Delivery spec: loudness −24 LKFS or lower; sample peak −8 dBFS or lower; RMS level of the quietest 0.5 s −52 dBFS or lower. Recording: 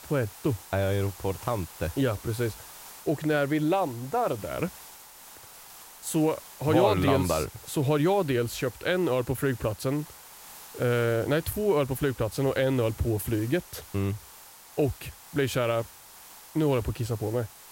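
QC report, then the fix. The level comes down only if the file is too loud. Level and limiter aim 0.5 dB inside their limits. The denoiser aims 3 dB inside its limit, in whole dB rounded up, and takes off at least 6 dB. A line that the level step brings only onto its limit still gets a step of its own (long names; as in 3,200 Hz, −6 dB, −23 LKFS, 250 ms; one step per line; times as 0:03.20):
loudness −28.0 LKFS: in spec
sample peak −9.5 dBFS: in spec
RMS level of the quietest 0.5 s −49 dBFS: out of spec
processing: broadband denoise 6 dB, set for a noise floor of −49 dBFS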